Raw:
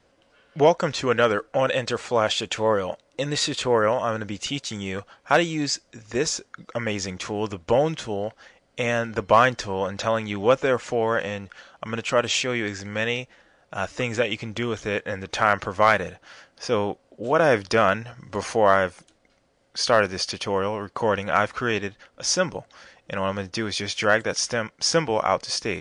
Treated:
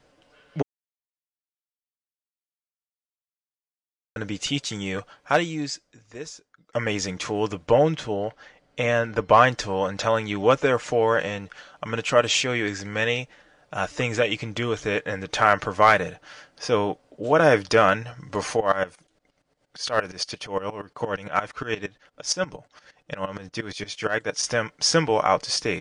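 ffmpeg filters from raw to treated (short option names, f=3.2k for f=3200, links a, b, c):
-filter_complex "[0:a]asettb=1/sr,asplit=3[a][b][c];[a]atrim=end=7.674[d];[b]atrim=start=7.67:end=9.48,asetpts=PTS-STARTPTS,afade=t=in:d=0.004:c=qsin,afade=t=out:st=1.806:d=0.004:c=qsin,highshelf=f=6.7k:g=-10.5[e];[c]atrim=start=9.476[f];[d][e]acrossfade=d=0.004:c1=hsin:c2=qsin[g];[g][f]acrossfade=d=0.004:c1=qsin:c2=hsin,asplit=3[h][i][j];[h]afade=t=out:st=18.56:d=0.02[k];[i]aeval=exprs='val(0)*pow(10,-18*if(lt(mod(-8.6*n/s,1),2*abs(-8.6)/1000),1-mod(-8.6*n/s,1)/(2*abs(-8.6)/1000),(mod(-8.6*n/s,1)-2*abs(-8.6)/1000)/(1-2*abs(-8.6)/1000))/20)':c=same,afade=t=in:st=18.56:d=0.02,afade=t=out:st=24.42:d=0.02[l];[j]afade=t=in:st=24.42:d=0.02[m];[k][l][m]amix=inputs=3:normalize=0,asplit=4[n][o][p][q];[n]atrim=end=0.62,asetpts=PTS-STARTPTS,afade=t=out:st=0.616:d=0.004:c=hsin[r];[o]atrim=start=0.62:end=4.16,asetpts=PTS-STARTPTS,volume=0[s];[p]atrim=start=4.16:end=6.73,asetpts=PTS-STARTPTS,afade=t=in:d=0.004:c=hsin,afade=t=out:st=0.83:d=1.74:c=qua:silence=0.112202[t];[q]atrim=start=6.73,asetpts=PTS-STARTPTS,afade=t=in:d=0.004:c=hsin:silence=0.112202[u];[r][s][t][u]concat=n=4:v=0:a=1,aecho=1:1:6.7:0.35,volume=1dB"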